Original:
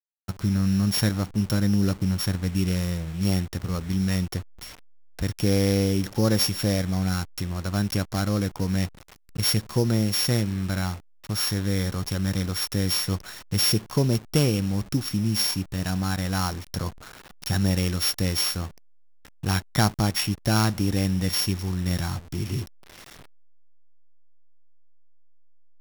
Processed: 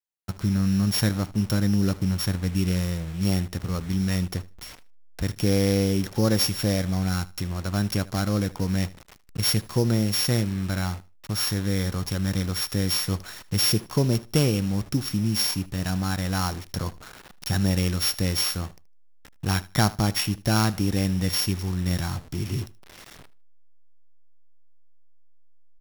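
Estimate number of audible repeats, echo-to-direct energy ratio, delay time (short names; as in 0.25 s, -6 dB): 2, -20.0 dB, 77 ms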